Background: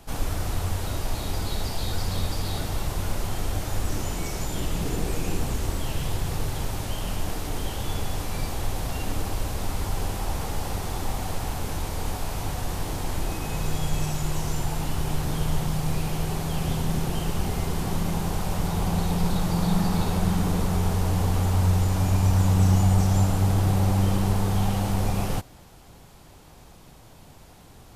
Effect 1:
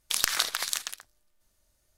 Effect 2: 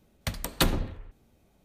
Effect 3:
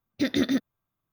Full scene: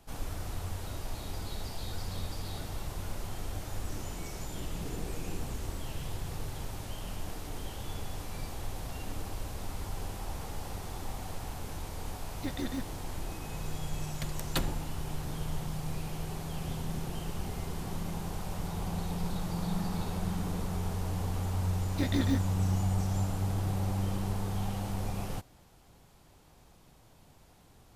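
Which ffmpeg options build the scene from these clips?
-filter_complex "[3:a]asplit=2[a][b];[0:a]volume=-10dB[c];[b]flanger=delay=17.5:depth=4.5:speed=2.7[d];[a]atrim=end=1.12,asetpts=PTS-STARTPTS,volume=-12.5dB,afade=t=in:d=0.004:c=hsin,afade=t=out:st=1.116:d=0.004:c=hsin,adelay=12230[e];[2:a]atrim=end=1.64,asetpts=PTS-STARTPTS,volume=-8.5dB,afade=t=in:d=0.004:c=hsin,afade=t=out:st=1.636:d=0.004:c=hsin,adelay=13950[f];[d]atrim=end=1.12,asetpts=PTS-STARTPTS,volume=-4dB,afade=t=in:d=0.004:c=hsin,afade=t=out:st=1.116:d=0.004:c=hsin,adelay=21780[g];[c][e][f][g]amix=inputs=4:normalize=0"

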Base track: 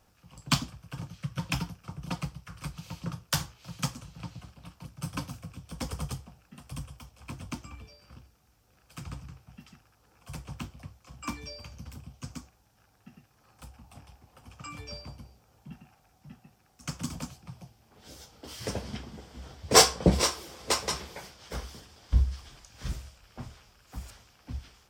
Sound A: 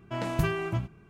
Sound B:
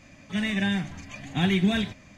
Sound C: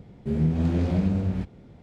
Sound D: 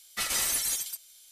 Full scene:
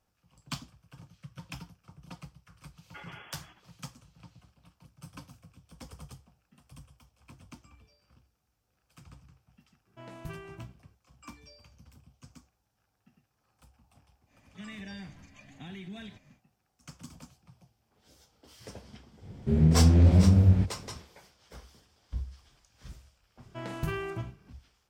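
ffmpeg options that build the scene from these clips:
-filter_complex "[1:a]asplit=2[a][b];[0:a]volume=-12dB[c];[4:a]lowpass=f=2.9k:t=q:w=0.5098,lowpass=f=2.9k:t=q:w=0.6013,lowpass=f=2.9k:t=q:w=0.9,lowpass=f=2.9k:t=q:w=2.563,afreqshift=-3400[d];[2:a]alimiter=limit=-22dB:level=0:latency=1:release=76[e];[3:a]equalizer=f=91:w=2.2:g=9.5[f];[b]asplit=2[g][h];[h]adelay=46,volume=-9dB[i];[g][i]amix=inputs=2:normalize=0[j];[d]atrim=end=1.31,asetpts=PTS-STARTPTS,volume=-12dB,afade=t=in:d=0.004:c=hsin,afade=t=out:st=1.306:d=0.004:c=hsin,adelay=2770[k];[a]atrim=end=1.09,asetpts=PTS-STARTPTS,volume=-15dB,afade=t=in:d=0.004:c=hsin,afade=t=out:st=1.086:d=0.004:c=hsin,adelay=434826S[l];[e]atrim=end=2.17,asetpts=PTS-STARTPTS,volume=-13.5dB,afade=t=in:d=0.1,afade=t=out:st=2.07:d=0.1,adelay=14250[m];[f]atrim=end=1.82,asetpts=PTS-STARTPTS,volume=-0.5dB,afade=t=in:d=0.05,afade=t=out:st=1.77:d=0.05,adelay=19210[n];[j]atrim=end=1.09,asetpts=PTS-STARTPTS,volume=-6.5dB,afade=t=in:d=0.004:c=hsin,afade=t=out:st=1.086:d=0.004:c=hsin,adelay=23440[o];[c][k][l][m][n][o]amix=inputs=6:normalize=0"

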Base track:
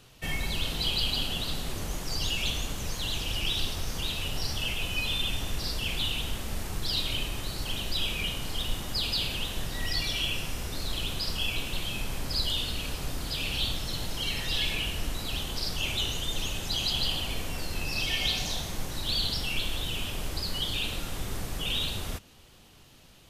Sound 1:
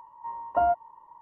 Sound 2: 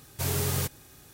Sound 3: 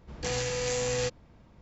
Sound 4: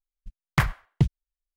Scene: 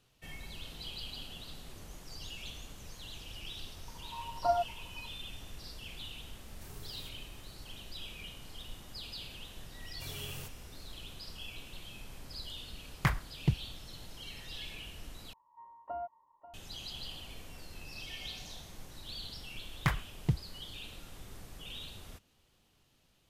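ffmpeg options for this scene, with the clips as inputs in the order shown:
-filter_complex "[1:a]asplit=2[a][b];[2:a]asplit=2[c][d];[4:a]asplit=2[e][f];[0:a]volume=-15dB[g];[a]aphaser=in_gain=1:out_gain=1:delay=3:decay=0.5:speed=2:type=triangular[h];[c]alimiter=level_in=1.5dB:limit=-24dB:level=0:latency=1:release=71,volume=-1.5dB[i];[b]aecho=1:1:538:0.188[j];[g]asplit=2[k][l];[k]atrim=end=15.334[m];[j]atrim=end=1.21,asetpts=PTS-STARTPTS,volume=-17dB[n];[l]atrim=start=16.536[o];[h]atrim=end=1.21,asetpts=PTS-STARTPTS,volume=-7.5dB,afade=t=in:d=0.004:c=hsin,afade=t=out:st=1.206:d=0.004:c=hsin,adelay=3880[p];[i]atrim=end=1.13,asetpts=PTS-STARTPTS,volume=-18dB,afade=t=in:d=0.004:c=hsin,afade=t=out:st=1.126:d=0.004:c=hsin,adelay=283122S[q];[d]atrim=end=1.13,asetpts=PTS-STARTPTS,volume=-17dB,afade=t=in:d=0.004:c=hsin,afade=t=out:st=1.126:d=0.004:c=hsin,adelay=9810[r];[e]atrim=end=1.56,asetpts=PTS-STARTPTS,volume=-7.5dB,afade=t=in:d=0.004:c=hsin,afade=t=out:st=1.556:d=0.004:c=hsin,adelay=12470[s];[f]atrim=end=1.56,asetpts=PTS-STARTPTS,volume=-8.5dB,afade=t=in:d=0.004:c=hsin,afade=t=out:st=1.556:d=0.004:c=hsin,adelay=19280[t];[m][n]acrossfade=d=0.004:c1=hsin:c2=hsin[u];[u][o]acrossfade=d=0.004:c1=hsin:c2=hsin[v];[v][p][q][r][s][t]amix=inputs=6:normalize=0"

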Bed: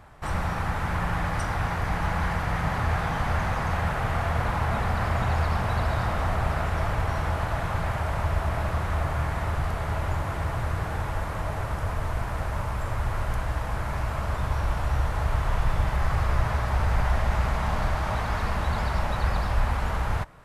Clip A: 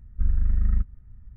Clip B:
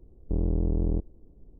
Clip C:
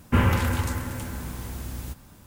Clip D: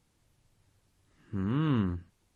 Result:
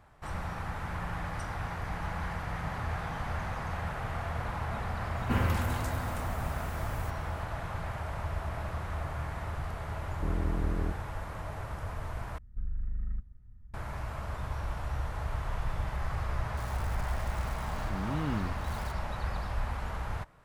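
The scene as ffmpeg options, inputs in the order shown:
-filter_complex "[0:a]volume=-9dB[a];[1:a]acompressor=threshold=-22dB:ratio=6:attack=3.2:release=140:knee=1:detection=peak[b];[4:a]aeval=exprs='val(0)+0.5*0.0141*sgn(val(0))':c=same[c];[a]asplit=2[d][e];[d]atrim=end=12.384[f];[b]atrim=end=1.36,asetpts=PTS-STARTPTS,volume=-6.5dB[g];[e]atrim=start=13.736[h];[3:a]atrim=end=2.26,asetpts=PTS-STARTPTS,volume=-8.5dB,afade=t=in:d=0.004:c=hsin,afade=t=out:st=2.256:d=0.004:c=hsin,adelay=227997S[i];[2:a]atrim=end=1.59,asetpts=PTS-STARTPTS,volume=-5.5dB,afade=t=in:d=0.004:c=hsin,afade=t=out:st=1.586:d=0.004:c=hsin,adelay=9920[j];[c]atrim=end=2.35,asetpts=PTS-STARTPTS,volume=-6.5dB,afade=t=in:d=0.004:c=hsin,afade=t=out:st=2.346:d=0.004:c=hsin,adelay=16570[k];[f][g]acrossfade=d=0.004:c1=hsin:c2=hsin[l];[l][h]acrossfade=d=0.004:c1=hsin:c2=hsin[m];[m][i][j][k]amix=inputs=4:normalize=0"

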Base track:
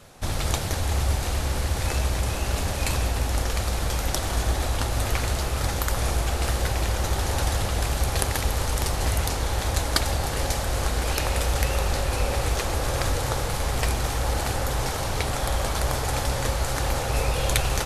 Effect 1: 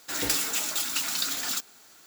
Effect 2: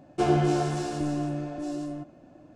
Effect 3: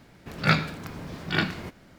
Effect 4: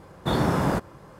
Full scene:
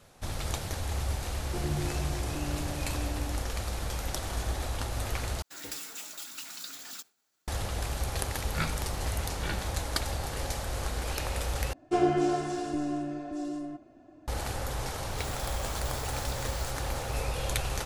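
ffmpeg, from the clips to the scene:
-filter_complex "[2:a]asplit=2[a][b];[1:a]asplit=2[c][d];[0:a]volume=-8dB[e];[a]acrossover=split=270|3000[f][g][h];[g]acompressor=threshold=-35dB:ratio=6:attack=3.2:release=140:knee=2.83:detection=peak[i];[f][i][h]amix=inputs=3:normalize=0[j];[c]agate=range=-33dB:threshold=-47dB:ratio=3:release=100:detection=peak[k];[b]aecho=1:1:2.9:0.63[l];[d]acompressor=threshold=-38dB:ratio=6:attack=3.2:release=140:knee=1:detection=peak[m];[e]asplit=3[n][o][p];[n]atrim=end=5.424[q];[k]atrim=end=2.06,asetpts=PTS-STARTPTS,volume=-13dB[r];[o]atrim=start=7.476:end=11.734[s];[l]atrim=end=2.55,asetpts=PTS-STARTPTS,volume=-5dB[t];[p]atrim=start=14.276[u];[j]atrim=end=2.55,asetpts=PTS-STARTPTS,volume=-7dB,afade=t=in:d=0.004:c=hsin,afade=t=out:st=2.546:d=0.004:c=hsin,adelay=1350[v];[3:a]atrim=end=1.98,asetpts=PTS-STARTPTS,volume=-12dB,afade=t=in:d=0.004:c=hsin,afade=t=out:st=1.976:d=0.004:c=hsin,adelay=8110[w];[m]atrim=end=2.06,asetpts=PTS-STARTPTS,volume=-3.5dB,afade=t=in:d=0.004:c=hsin,afade=t=out:st=2.056:d=0.004:c=hsin,adelay=15100[x];[q][r]acrossfade=d=0.004:c1=hsin:c2=hsin[y];[y][s]acrossfade=d=0.004:c1=hsin:c2=hsin[z];[z][t]acrossfade=d=0.004:c1=hsin:c2=hsin[aa];[aa][u]acrossfade=d=0.004:c1=hsin:c2=hsin[ab];[ab][v][w][x]amix=inputs=4:normalize=0"

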